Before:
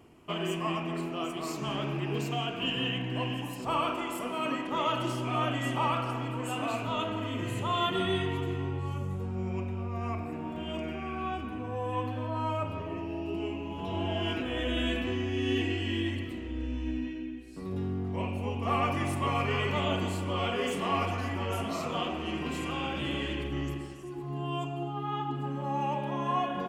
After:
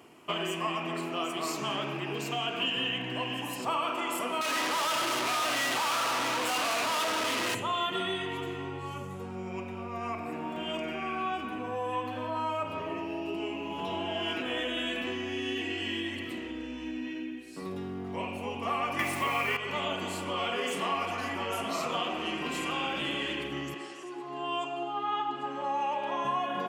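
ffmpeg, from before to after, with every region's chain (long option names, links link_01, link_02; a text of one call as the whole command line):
ffmpeg -i in.wav -filter_complex "[0:a]asettb=1/sr,asplit=3[link_01][link_02][link_03];[link_01]atrim=end=4.414[link_04];[link_02]atrim=start=4.41:end=7.55,asetpts=PTS-STARTPTS,afade=type=in:duration=0.004:curve=qsin,afade=type=out:start_time=3.136:duration=0.004:curve=qsin,asplit=2[link_05][link_06];[link_06]highpass=frequency=720:poles=1,volume=29dB,asoftclip=type=tanh:threshold=-16.5dB[link_07];[link_05][link_07]amix=inputs=2:normalize=0,lowpass=frequency=2100:poles=1,volume=-6dB,volume=34dB,asoftclip=hard,volume=-34dB[link_08];[link_03]atrim=start=7.546[link_09];[link_04][link_08]acrossfade=duration=0.004:curve1=hsin:curve2=qsin[link_10];[link_10][link_09]acrossfade=duration=0.004:curve1=qsin:curve2=hsin,asettb=1/sr,asplit=3[link_11][link_12][link_13];[link_11]atrim=end=18.994[link_14];[link_12]atrim=start=18.99:end=19.57,asetpts=PTS-STARTPTS,afade=type=in:duration=0.004:curve=qsin,afade=type=out:start_time=0.576:duration=0.004:curve=qsin,equalizer=frequency=2100:width=2.3:gain=7.5,acontrast=80,acrusher=bits=5:mix=0:aa=0.5[link_15];[link_13]atrim=start=19.566[link_16];[link_14][link_15]acrossfade=duration=0.004:curve1=hsin:curve2=qsin[link_17];[link_17][link_16]acrossfade=duration=0.004:curve1=qsin:curve2=hsin,asettb=1/sr,asplit=3[link_18][link_19][link_20];[link_18]atrim=end=23.744[link_21];[link_19]atrim=start=23.74:end=26.25,asetpts=PTS-STARTPTS,afade=type=in:duration=0.004:curve=qsin,afade=type=out:start_time=2.506:duration=0.004:curve=qsin,acompressor=mode=upward:threshold=-39dB:ratio=2.5:attack=3.2:release=140:knee=2.83:detection=peak,highpass=340,lowpass=7300[link_22];[link_20]atrim=start=26.246[link_23];[link_21][link_22]acrossfade=duration=0.004:curve1=hsin:curve2=qsin[link_24];[link_24][link_23]acrossfade=duration=0.004:curve1=qsin:curve2=hsin,acompressor=threshold=-32dB:ratio=6,highpass=140,lowshelf=frequency=420:gain=-9,volume=7dB" out.wav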